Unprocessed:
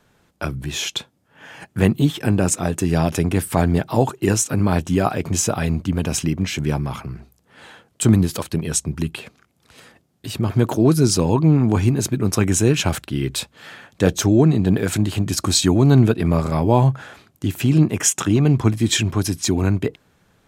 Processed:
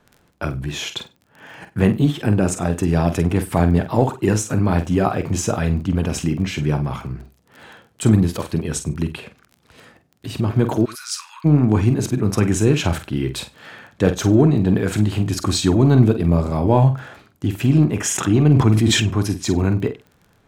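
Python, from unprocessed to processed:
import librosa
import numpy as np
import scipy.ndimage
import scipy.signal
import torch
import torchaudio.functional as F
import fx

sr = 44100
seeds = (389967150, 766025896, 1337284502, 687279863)

p1 = 10.0 ** (-15.5 / 20.0) * np.tanh(x / 10.0 ** (-15.5 / 20.0))
p2 = x + (p1 * librosa.db_to_amplitude(-10.5))
p3 = fx.high_shelf(p2, sr, hz=3700.0, db=-8.5)
p4 = fx.dmg_crackle(p3, sr, seeds[0], per_s=18.0, level_db=-33.0)
p5 = fx.doubler(p4, sr, ms=47.0, db=-9.5)
p6 = fx.steep_highpass(p5, sr, hz=1200.0, slope=48, at=(10.84, 11.44), fade=0.02)
p7 = fx.peak_eq(p6, sr, hz=1700.0, db=-6.5, octaves=1.3, at=(16.06, 16.65))
p8 = p7 + 10.0 ** (-23.5 / 20.0) * np.pad(p7, (int(97 * sr / 1000.0), 0))[:len(p7)]
p9 = fx.sustainer(p8, sr, db_per_s=30.0, at=(18.07, 19.0))
y = p9 * librosa.db_to_amplitude(-1.0)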